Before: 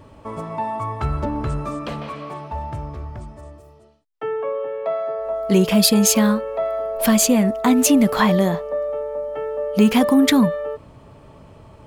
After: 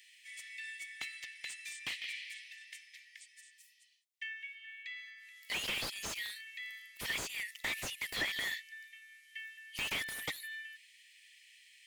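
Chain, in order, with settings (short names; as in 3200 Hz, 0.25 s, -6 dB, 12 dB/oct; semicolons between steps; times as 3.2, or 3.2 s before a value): Chebyshev high-pass 1800 Hz, order 8; compressor 20:1, threshold -29 dBFS, peak gain reduction 17.5 dB; slew limiter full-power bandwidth 41 Hz; gain +3 dB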